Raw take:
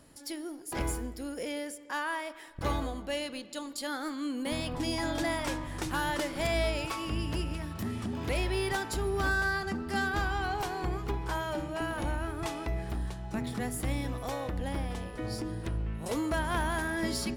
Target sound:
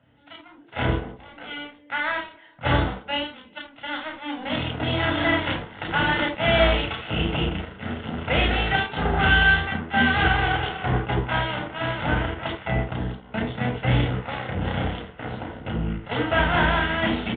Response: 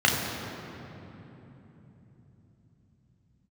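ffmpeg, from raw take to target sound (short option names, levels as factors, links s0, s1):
-filter_complex "[0:a]aeval=exprs='0.119*(cos(1*acos(clip(val(0)/0.119,-1,1)))-cos(1*PI/2))+0.0211*(cos(7*acos(clip(val(0)/0.119,-1,1)))-cos(7*PI/2))':c=same,aresample=8000,aresample=44100[s0];[1:a]atrim=start_sample=2205,atrim=end_sample=3969[s1];[s0][s1]afir=irnorm=-1:irlink=0,volume=0.631"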